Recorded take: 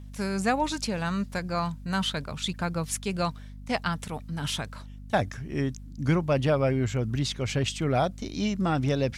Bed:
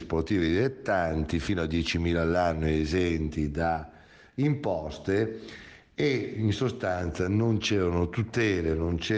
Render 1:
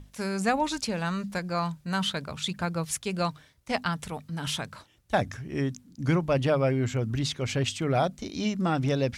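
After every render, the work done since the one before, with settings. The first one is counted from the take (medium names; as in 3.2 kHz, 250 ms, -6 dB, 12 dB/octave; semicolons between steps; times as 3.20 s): hum notches 50/100/150/200/250 Hz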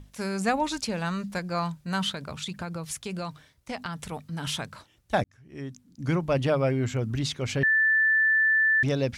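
2.10–3.97 s: compression, threshold -29 dBFS; 5.24–6.31 s: fade in; 7.63–8.83 s: bleep 1.76 kHz -18.5 dBFS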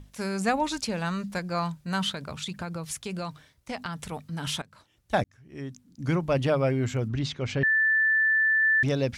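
4.62–5.14 s: fade in, from -21 dB; 7.08–8.63 s: distance through air 96 m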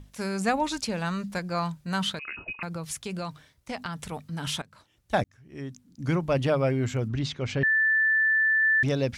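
2.19–2.63 s: frequency inversion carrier 2.7 kHz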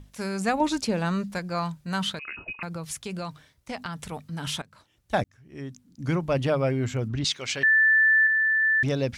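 0.60–1.24 s: peaking EQ 330 Hz +6.5 dB 2.1 oct; 7.24–8.27 s: tilt EQ +4.5 dB/octave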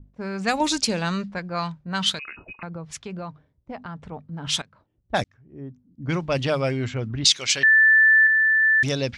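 peaking EQ 6.2 kHz +11.5 dB 2.6 oct; level-controlled noise filter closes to 340 Hz, open at -17.5 dBFS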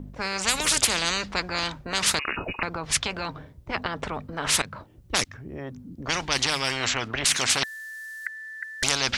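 spectrum-flattening compressor 10:1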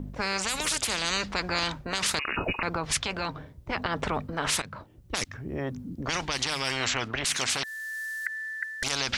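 gain riding within 4 dB 0.5 s; peak limiter -16 dBFS, peak gain reduction 11 dB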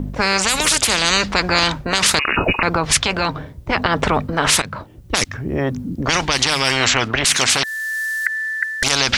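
trim +12 dB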